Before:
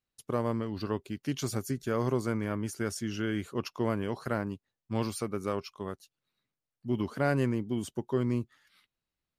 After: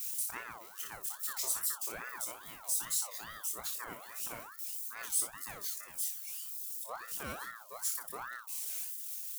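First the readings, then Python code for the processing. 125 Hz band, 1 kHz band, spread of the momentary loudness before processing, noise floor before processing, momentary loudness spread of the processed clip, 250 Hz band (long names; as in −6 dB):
−27.0 dB, −7.0 dB, 8 LU, below −85 dBFS, 10 LU, −26.5 dB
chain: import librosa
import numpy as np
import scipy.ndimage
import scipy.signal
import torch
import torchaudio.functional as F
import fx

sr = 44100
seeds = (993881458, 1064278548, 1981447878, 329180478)

y = x + 0.5 * 10.0 ** (-31.5 / 20.0) * np.diff(np.sign(x), prepend=np.sign(x[:1]))
y = scipy.signal.lfilter([1.0, -0.8], [1.0], y)
y = fx.dereverb_blind(y, sr, rt60_s=1.5)
y = fx.dynamic_eq(y, sr, hz=8200.0, q=1.5, threshold_db=-52.0, ratio=4.0, max_db=6)
y = fx.doubler(y, sr, ms=24.0, db=-12.5)
y = fx.room_early_taps(y, sr, ms=(25, 60), db=(-3.5, -7.5))
y = fx.ring_lfo(y, sr, carrier_hz=1200.0, swing_pct=35, hz=2.4)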